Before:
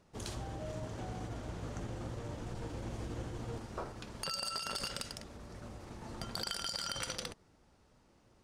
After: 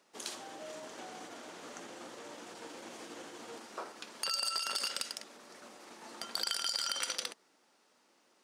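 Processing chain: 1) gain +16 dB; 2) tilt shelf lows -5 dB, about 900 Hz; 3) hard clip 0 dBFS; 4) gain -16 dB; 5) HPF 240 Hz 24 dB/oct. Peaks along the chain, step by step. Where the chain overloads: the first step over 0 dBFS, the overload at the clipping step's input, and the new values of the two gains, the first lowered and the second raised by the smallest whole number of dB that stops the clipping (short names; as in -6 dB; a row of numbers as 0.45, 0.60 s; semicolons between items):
-8.0, -2.5, -2.5, -18.5, -17.0 dBFS; no overload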